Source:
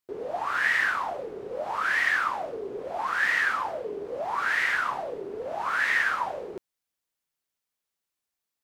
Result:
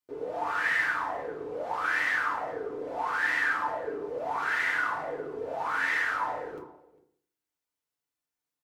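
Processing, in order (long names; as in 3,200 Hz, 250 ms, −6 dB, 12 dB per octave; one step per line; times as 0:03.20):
slap from a distant wall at 69 metres, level −21 dB
feedback delay network reverb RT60 0.59 s, low-frequency decay 1.05×, high-frequency decay 0.4×, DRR −3 dB
level −7 dB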